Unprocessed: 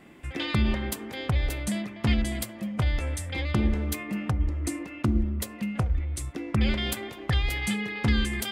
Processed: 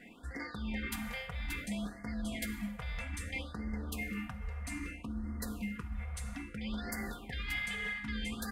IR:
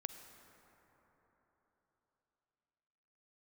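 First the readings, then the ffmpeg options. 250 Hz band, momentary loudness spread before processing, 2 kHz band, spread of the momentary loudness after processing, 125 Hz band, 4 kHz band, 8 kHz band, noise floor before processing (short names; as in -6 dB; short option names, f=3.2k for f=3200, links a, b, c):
-10.5 dB, 7 LU, -5.5 dB, 5 LU, -15.0 dB, -11.0 dB, -10.0 dB, -43 dBFS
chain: -filter_complex "[1:a]atrim=start_sample=2205[a];[0:a][a]afir=irnorm=-1:irlink=0,areverse,acompressor=threshold=-35dB:ratio=12,areverse,flanger=delay=7.9:depth=8.7:regen=-73:speed=0.91:shape=triangular,equalizer=f=1.9k:w=1:g=8,aecho=1:1:4.2:0.59,afftfilt=real='re*(1-between(b*sr/1024,280*pow(3100/280,0.5+0.5*sin(2*PI*0.61*pts/sr))/1.41,280*pow(3100/280,0.5+0.5*sin(2*PI*0.61*pts/sr))*1.41))':imag='im*(1-between(b*sr/1024,280*pow(3100/280,0.5+0.5*sin(2*PI*0.61*pts/sr))/1.41,280*pow(3100/280,0.5+0.5*sin(2*PI*0.61*pts/sr))*1.41))':win_size=1024:overlap=0.75,volume=2dB"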